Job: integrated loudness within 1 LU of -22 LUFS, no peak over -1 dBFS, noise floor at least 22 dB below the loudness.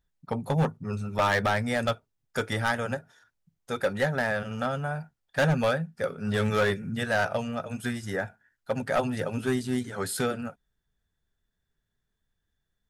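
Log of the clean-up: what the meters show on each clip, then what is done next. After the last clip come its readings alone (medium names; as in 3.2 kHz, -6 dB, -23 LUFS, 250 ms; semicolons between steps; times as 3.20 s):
clipped samples 0.8%; clipping level -18.5 dBFS; loudness -29.0 LUFS; peak level -18.5 dBFS; loudness target -22.0 LUFS
-> clip repair -18.5 dBFS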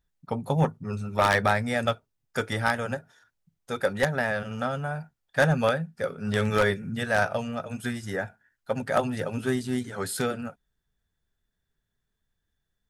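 clipped samples 0.0%; loudness -27.5 LUFS; peak level -9.5 dBFS; loudness target -22.0 LUFS
-> trim +5.5 dB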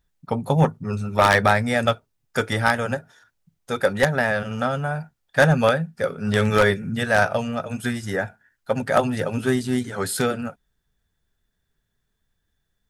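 loudness -22.0 LUFS; peak level -4.0 dBFS; noise floor -75 dBFS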